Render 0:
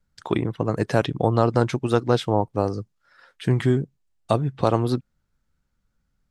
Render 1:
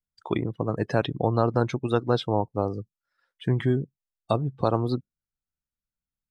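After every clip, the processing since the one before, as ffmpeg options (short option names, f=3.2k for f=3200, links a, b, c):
-af "afftdn=nr=19:nf=-35,highshelf=f=4.4k:g=6.5,volume=-3.5dB"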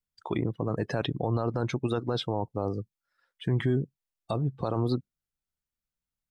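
-af "alimiter=limit=-17dB:level=0:latency=1:release=22"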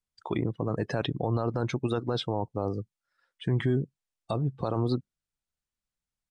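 -af "aresample=22050,aresample=44100"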